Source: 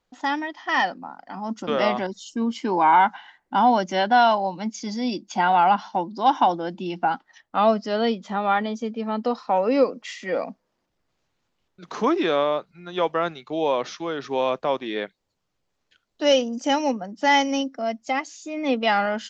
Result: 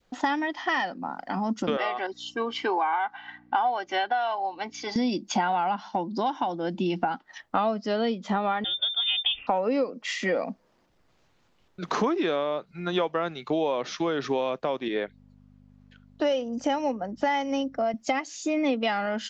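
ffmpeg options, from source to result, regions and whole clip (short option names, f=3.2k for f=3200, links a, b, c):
-filter_complex "[0:a]asettb=1/sr,asplit=3[a][b][c];[a]atrim=end=1.774[d];[b]atrim=start=1.77:end=4.96,asetpts=PTS-STARTPTS,afade=t=in:d=0.004:c=qsin,afade=t=out:st=3.186:d=0.004:c=qsin,aecho=1:1:2.6:0.49,atrim=end_sample=140679,aeval=exprs='val(0)+0.01*(sin(2*PI*60*n/s)+sin(2*PI*2*60*n/s)/2+sin(2*PI*3*60*n/s)/3+sin(2*PI*4*60*n/s)/4+sin(2*PI*5*60*n/s)/5)':c=same,highpass=610,lowpass=3.4k[e];[c]atrim=start=4.956[f];[d][e]acrossfade=d=0.004:c1=hsin:c2=qsin[g];[g][f]acrossfade=d=0.004:c1=qsin:c2=hsin,asettb=1/sr,asplit=3[h][i][j];[h]atrim=end=8.644[k];[i]atrim=start=8.64:end=9.47,asetpts=PTS-STARTPTS,afade=t=in:d=0.004:c=qsin,afade=t=out:st=0.826:d=0.004:c=qsin,lowpass=f=3.2k:t=q:w=0.5098,lowpass=f=3.2k:t=q:w=0.6013,lowpass=f=3.2k:t=q:w=0.9,lowpass=f=3.2k:t=q:w=2.563,afreqshift=-3800,lowshelf=f=150:g=7[l];[j]atrim=start=9.466[m];[k][l]acrossfade=d=0.004:c1=hsin:c2=qsin[n];[n][m]acrossfade=d=0.004:c1=qsin:c2=hsin,asettb=1/sr,asplit=3[o][p][q];[o]atrim=end=14.884[r];[p]atrim=start=14.88:end=17.94,asetpts=PTS-STARTPTS,afade=t=in:d=0.004:c=qsin,afade=t=out:st=3.056:d=0.004:c=qsin,aeval=exprs='val(0)+0.00355*(sin(2*PI*50*n/s)+sin(2*PI*2*50*n/s)/2+sin(2*PI*3*50*n/s)/3+sin(2*PI*4*50*n/s)/4+sin(2*PI*5*50*n/s)/5)':c=same,highpass=f=420:p=1,highshelf=f=2.1k:g=-10.5[s];[q]atrim=start=17.936[t];[r][s]acrossfade=d=0.004:c1=hsin:c2=qsin[u];[u][t]acrossfade=d=0.004:c1=qsin:c2=hsin,highshelf=f=4.9k:g=-5.5,acompressor=threshold=-32dB:ratio=6,adynamicequalizer=threshold=0.00398:dfrequency=1000:dqfactor=0.98:tfrequency=1000:tqfactor=0.98:attack=5:release=100:ratio=0.375:range=2:mode=cutabove:tftype=bell,volume=9dB"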